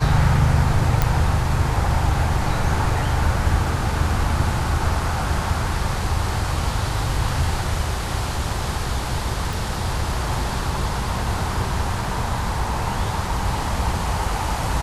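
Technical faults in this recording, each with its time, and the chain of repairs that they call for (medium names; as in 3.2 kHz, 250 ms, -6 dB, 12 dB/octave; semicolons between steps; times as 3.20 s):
1.02 s: pop
9.53 s: pop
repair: de-click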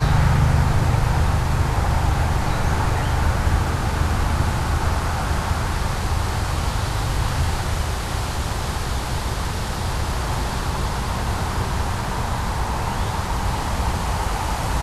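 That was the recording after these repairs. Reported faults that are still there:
9.53 s: pop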